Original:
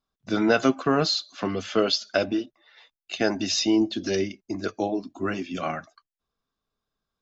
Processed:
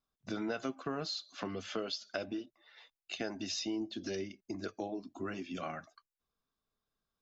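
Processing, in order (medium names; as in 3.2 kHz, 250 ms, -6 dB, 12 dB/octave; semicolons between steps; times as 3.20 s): compression 2.5:1, threshold -34 dBFS, peak gain reduction 13 dB; trim -5 dB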